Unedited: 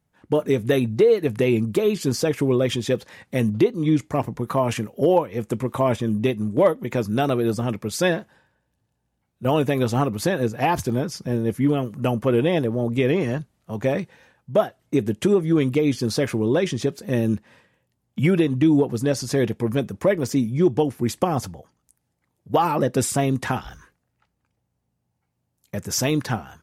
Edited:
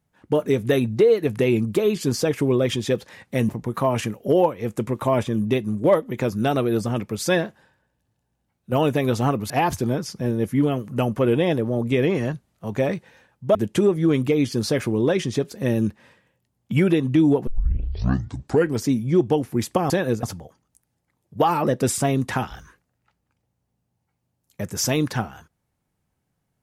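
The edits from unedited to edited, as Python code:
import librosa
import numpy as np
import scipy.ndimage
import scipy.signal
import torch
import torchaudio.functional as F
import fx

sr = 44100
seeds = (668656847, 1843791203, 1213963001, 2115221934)

y = fx.edit(x, sr, fx.cut(start_s=3.49, length_s=0.73),
    fx.move(start_s=10.23, length_s=0.33, to_s=21.37),
    fx.cut(start_s=14.61, length_s=0.41),
    fx.tape_start(start_s=18.94, length_s=1.39), tone=tone)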